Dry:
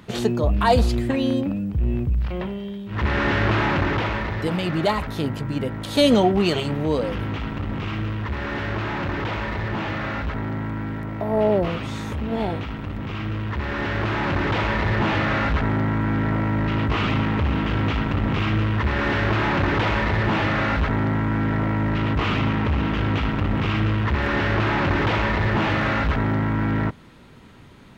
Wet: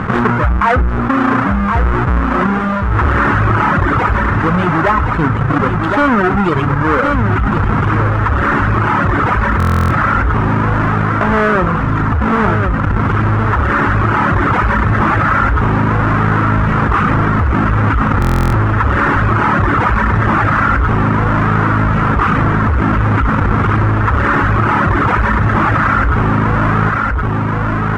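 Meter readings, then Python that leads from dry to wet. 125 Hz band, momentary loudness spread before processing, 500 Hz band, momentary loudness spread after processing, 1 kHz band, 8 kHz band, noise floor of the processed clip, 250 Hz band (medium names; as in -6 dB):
+10.0 dB, 8 LU, +5.5 dB, 2 LU, +13.0 dB, no reading, -15 dBFS, +8.0 dB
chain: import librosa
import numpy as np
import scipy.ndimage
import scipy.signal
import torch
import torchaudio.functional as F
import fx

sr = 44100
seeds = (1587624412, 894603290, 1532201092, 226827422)

p1 = fx.halfwave_hold(x, sr)
p2 = scipy.signal.sosfilt(scipy.signal.butter(2, 6700.0, 'lowpass', fs=sr, output='sos'), p1)
p3 = fx.dereverb_blind(p2, sr, rt60_s=1.8)
p4 = fx.rider(p3, sr, range_db=10, speed_s=0.5)
p5 = p3 + (p4 * librosa.db_to_amplitude(2.0))
p6 = fx.curve_eq(p5, sr, hz=(180.0, 660.0, 1300.0, 4300.0), db=(0, -3, 11, -18))
p7 = p6 + fx.echo_single(p6, sr, ms=1069, db=-9.5, dry=0)
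p8 = fx.rev_schroeder(p7, sr, rt60_s=0.44, comb_ms=38, drr_db=18.5)
p9 = fx.buffer_glitch(p8, sr, at_s=(9.58, 18.2), block=1024, repeats=13)
p10 = fx.env_flatten(p9, sr, amount_pct=70)
y = p10 * librosa.db_to_amplitude(-5.0)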